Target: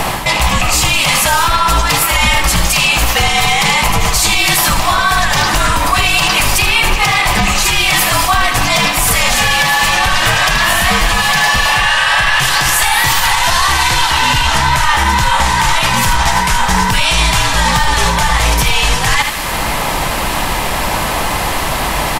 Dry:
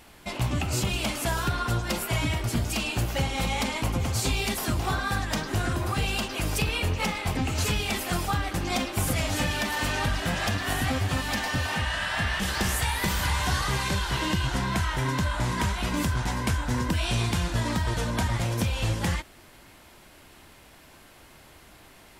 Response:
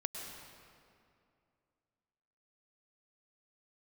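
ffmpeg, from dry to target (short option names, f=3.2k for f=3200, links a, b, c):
-filter_complex "[0:a]acrossover=split=940[a][b];[a]acompressor=mode=upward:threshold=-34dB:ratio=2.5[c];[c][b]amix=inputs=2:normalize=0,lowshelf=f=760:t=q:w=1.5:g=-7.5,areverse,acompressor=threshold=-40dB:ratio=12,areverse,equalizer=f=320:w=3.7:g=-5.5,bandreject=f=1.5k:w=9.2,aecho=1:1:77:0.316,afreqshift=-60,alimiter=level_in=34.5dB:limit=-1dB:release=50:level=0:latency=1,volume=-1dB"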